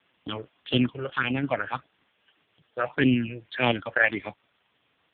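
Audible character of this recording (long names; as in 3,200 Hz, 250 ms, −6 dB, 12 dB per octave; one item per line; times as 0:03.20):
phaser sweep stages 6, 1.7 Hz, lowest notch 230–1,500 Hz
sample-and-hold tremolo
a quantiser's noise floor 10 bits, dither triangular
AMR narrowband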